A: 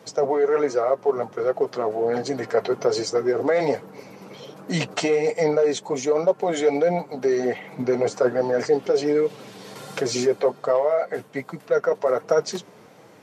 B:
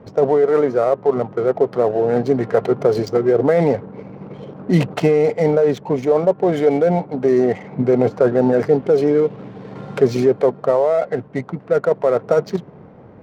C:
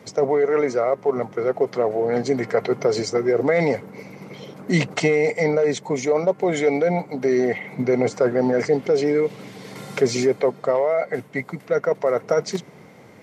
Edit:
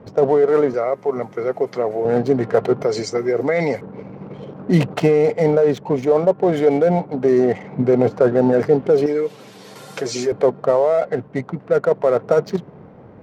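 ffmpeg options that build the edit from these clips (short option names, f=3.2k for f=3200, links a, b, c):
-filter_complex "[2:a]asplit=2[a][b];[1:a]asplit=4[c][d][e][f];[c]atrim=end=0.742[g];[a]atrim=start=0.738:end=2.052[h];[d]atrim=start=2.048:end=2.832[i];[b]atrim=start=2.828:end=3.812[j];[e]atrim=start=3.808:end=9.062[k];[0:a]atrim=start=9.058:end=10.322[l];[f]atrim=start=10.318[m];[g][h]acrossfade=d=0.004:c1=hsin:c2=hsin[n];[n][i]acrossfade=d=0.004:c1=hsin:c2=hsin[o];[o][j]acrossfade=d=0.004:c1=hsin:c2=hsin[p];[p][k]acrossfade=d=0.004:c1=hsin:c2=hsin[q];[q][l]acrossfade=d=0.004:c1=hsin:c2=hsin[r];[r][m]acrossfade=d=0.004:c1=hsin:c2=hsin"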